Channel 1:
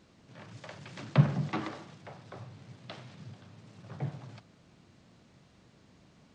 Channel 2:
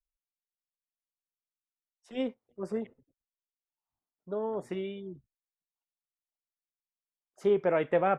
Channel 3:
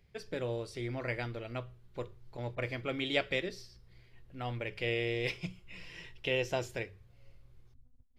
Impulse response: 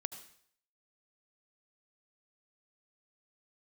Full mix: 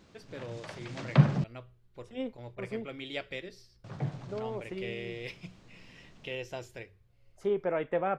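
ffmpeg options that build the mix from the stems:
-filter_complex "[0:a]volume=2dB,asplit=3[link_01][link_02][link_03];[link_01]atrim=end=1.44,asetpts=PTS-STARTPTS,afade=type=out:start_time=1.436:duration=0.004:curve=hsin[link_04];[link_02]atrim=start=1.44:end=3.84,asetpts=PTS-STARTPTS,volume=0[link_05];[link_03]atrim=start=3.84,asetpts=PTS-STARTPTS,afade=type=in:duration=0.004:curve=hsin[link_06];[link_04][link_05][link_06]concat=n=3:v=0:a=1[link_07];[1:a]volume=-4dB[link_08];[2:a]volume=-6.5dB[link_09];[link_07][link_08][link_09]amix=inputs=3:normalize=0"

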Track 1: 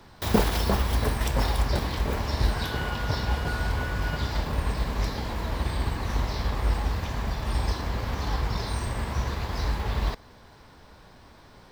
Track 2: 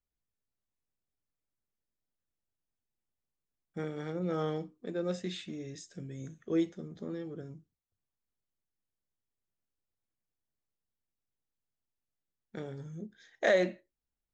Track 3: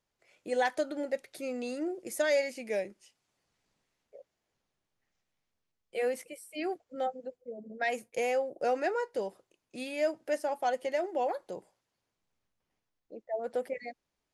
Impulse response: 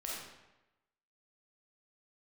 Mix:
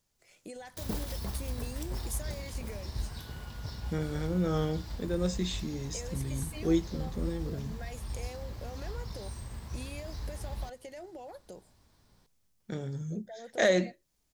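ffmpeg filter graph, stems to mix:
-filter_complex "[0:a]adelay=550,volume=-19dB[link_01];[1:a]adelay=150,volume=0.5dB[link_02];[2:a]alimiter=level_in=4dB:limit=-24dB:level=0:latency=1:release=44,volume=-4dB,acompressor=threshold=-49dB:ratio=2.5,volume=0dB[link_03];[link_01][link_02][link_03]amix=inputs=3:normalize=0,bass=frequency=250:gain=8,treble=frequency=4000:gain=11"

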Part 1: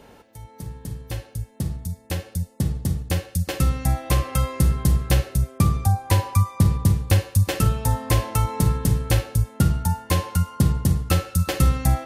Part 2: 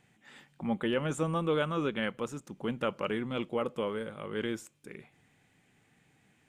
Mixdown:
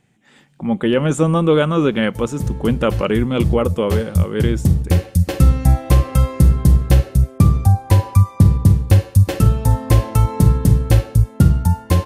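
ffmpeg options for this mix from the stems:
ffmpeg -i stem1.wav -i stem2.wav -filter_complex "[0:a]adelay=1800,volume=-1.5dB[link_01];[1:a]equalizer=frequency=7200:width=0.43:gain=5.5,volume=3dB,asplit=2[link_02][link_03];[link_03]apad=whole_len=611188[link_04];[link_01][link_04]sidechaincompress=threshold=-29dB:ratio=8:attack=16:release=243[link_05];[link_05][link_02]amix=inputs=2:normalize=0,tiltshelf=frequency=740:gain=4.5,dynaudnorm=framelen=160:gausssize=9:maxgain=10.5dB" out.wav

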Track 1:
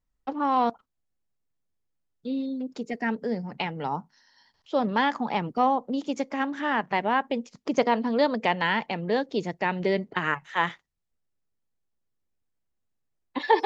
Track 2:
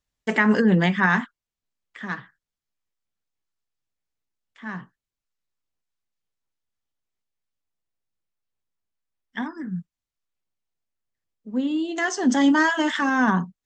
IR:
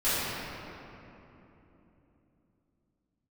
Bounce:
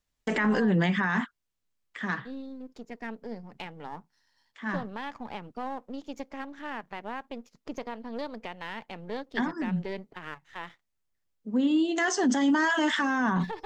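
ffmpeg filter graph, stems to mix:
-filter_complex "[0:a]aeval=exprs='if(lt(val(0),0),0.447*val(0),val(0))':channel_layout=same,alimiter=limit=-15.5dB:level=0:latency=1:release=280,volume=-8dB[link_01];[1:a]volume=1dB[link_02];[link_01][link_02]amix=inputs=2:normalize=0,alimiter=limit=-17.5dB:level=0:latency=1:release=37"

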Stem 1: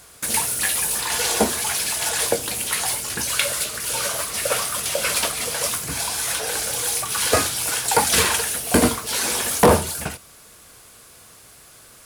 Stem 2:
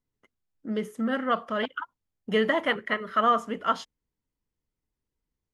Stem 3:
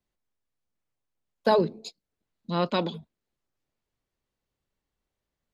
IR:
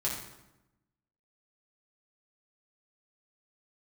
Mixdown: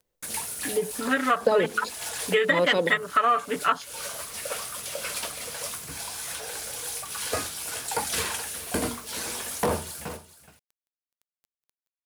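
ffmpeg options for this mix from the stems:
-filter_complex "[0:a]bandreject=frequency=60:width_type=h:width=6,bandreject=frequency=120:width_type=h:width=6,bandreject=frequency=180:width_type=h:width=6,bandreject=frequency=240:width_type=h:width=6,bandreject=frequency=300:width_type=h:width=6,bandreject=frequency=360:width_type=h:width=6,acrusher=bits=5:mix=0:aa=0.000001,volume=-10.5dB,asplit=2[link_01][link_02];[link_02]volume=-15dB[link_03];[1:a]afwtdn=0.0158,aecho=1:1:6.9:0.96,crystalizer=i=8:c=0,volume=0.5dB,asplit=2[link_04][link_05];[2:a]equalizer=frequency=490:width_type=o:width=0.49:gain=14,volume=1.5dB[link_06];[link_05]apad=whole_len=531464[link_07];[link_01][link_07]sidechaincompress=threshold=-29dB:ratio=8:attack=16:release=251[link_08];[link_03]aecho=0:1:422:1[link_09];[link_08][link_04][link_06][link_09]amix=inputs=4:normalize=0,acompressor=threshold=-20dB:ratio=3"

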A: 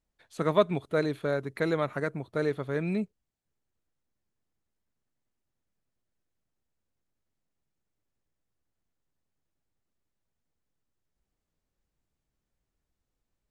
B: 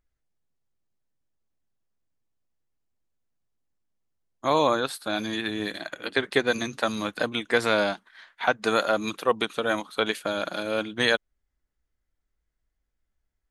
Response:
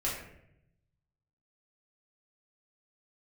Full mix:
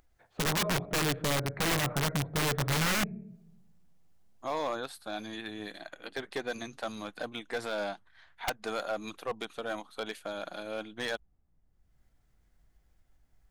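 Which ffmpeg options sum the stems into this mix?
-filter_complex "[0:a]lowpass=1500,asubboost=boost=3.5:cutoff=240,volume=1dB,asplit=3[link_01][link_02][link_03];[link_02]volume=-18.5dB[link_04];[1:a]acompressor=mode=upward:threshold=-40dB:ratio=2.5,asoftclip=type=hard:threshold=-17dB,volume=-11dB[link_05];[link_03]apad=whole_len=595454[link_06];[link_05][link_06]sidechaincompress=threshold=-47dB:ratio=8:attack=16:release=202[link_07];[2:a]atrim=start_sample=2205[link_08];[link_04][link_08]afir=irnorm=-1:irlink=0[link_09];[link_01][link_07][link_09]amix=inputs=3:normalize=0,aeval=exprs='0.0668*(abs(mod(val(0)/0.0668+3,4)-2)-1)':channel_layout=same,equalizer=frequency=740:width=3.3:gain=6,aeval=exprs='(mod(15*val(0)+1,2)-1)/15':channel_layout=same"

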